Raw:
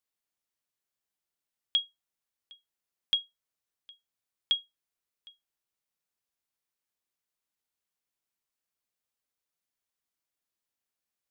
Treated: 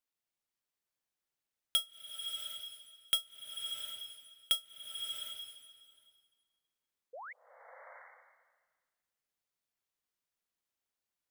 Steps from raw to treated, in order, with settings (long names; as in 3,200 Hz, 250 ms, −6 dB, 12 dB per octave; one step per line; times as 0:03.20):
each half-wave held at its own peak
sound drawn into the spectrogram rise, 0:07.13–0:07.33, 460–2,300 Hz −40 dBFS
slow-attack reverb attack 720 ms, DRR 3.5 dB
level −6 dB